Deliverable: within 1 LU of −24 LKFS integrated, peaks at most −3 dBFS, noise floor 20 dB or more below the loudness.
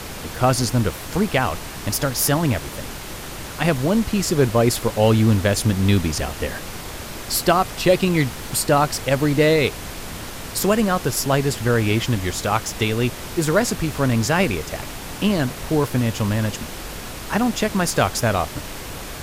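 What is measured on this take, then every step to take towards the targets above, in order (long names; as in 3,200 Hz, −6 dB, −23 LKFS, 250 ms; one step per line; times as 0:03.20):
background noise floor −33 dBFS; target noise floor −41 dBFS; integrated loudness −20.5 LKFS; sample peak −4.5 dBFS; target loudness −24.0 LKFS
→ noise reduction from a noise print 8 dB
level −3.5 dB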